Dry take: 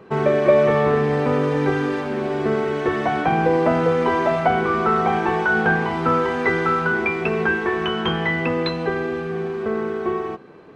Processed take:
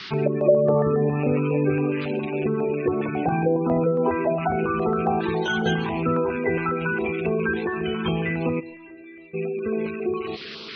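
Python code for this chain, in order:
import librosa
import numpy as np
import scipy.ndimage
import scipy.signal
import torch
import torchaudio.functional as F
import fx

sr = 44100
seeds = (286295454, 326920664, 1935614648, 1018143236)

y = fx.rattle_buzz(x, sr, strikes_db=-33.0, level_db=-15.0)
y = fx.peak_eq(y, sr, hz=3300.0, db=-7.5, octaves=2.5)
y = y + 10.0 ** (-19.0 / 20.0) * np.pad(y, (int(786 * sr / 1000.0), 0))[:len(y)]
y = fx.sample_hold(y, sr, seeds[0], rate_hz=4700.0, jitter_pct=20, at=(5.21, 5.86))
y = fx.dmg_noise_band(y, sr, seeds[1], low_hz=1100.0, high_hz=4600.0, level_db=-37.0)
y = fx.air_absorb(y, sr, metres=160.0, at=(3.36, 3.79), fade=0.02)
y = fx.spec_gate(y, sr, threshold_db=-20, keep='strong')
y = fx.stiff_resonator(y, sr, f0_hz=320.0, decay_s=0.31, stiffness=0.002, at=(8.59, 9.33), fade=0.02)
y = y + 10.0 ** (-22.0 / 20.0) * np.pad(y, (int(136 * sr / 1000.0), 0))[:len(y)]
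y = fx.filter_held_notch(y, sr, hz=7.3, low_hz=520.0, high_hz=1800.0)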